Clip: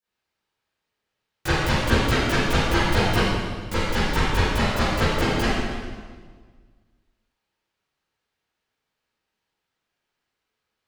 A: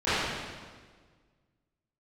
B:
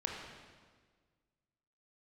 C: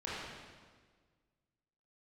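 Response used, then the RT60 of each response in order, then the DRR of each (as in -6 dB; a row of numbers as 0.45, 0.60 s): A; 1.6, 1.6, 1.6 s; -19.0, -1.0, -9.0 dB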